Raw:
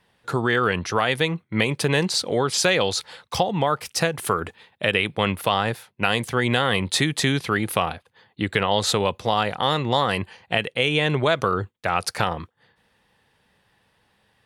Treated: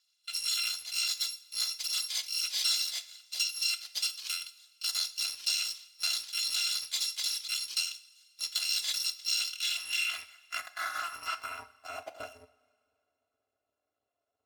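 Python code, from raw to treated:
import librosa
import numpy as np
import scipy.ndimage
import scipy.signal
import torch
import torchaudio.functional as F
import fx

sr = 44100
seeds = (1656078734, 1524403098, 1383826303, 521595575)

y = fx.bit_reversed(x, sr, seeds[0], block=256)
y = fx.filter_sweep_bandpass(y, sr, from_hz=4200.0, to_hz=520.0, start_s=9.37, end_s=12.45, q=2.6)
y = fx.rev_double_slope(y, sr, seeds[1], early_s=0.45, late_s=2.3, knee_db=-18, drr_db=10.0)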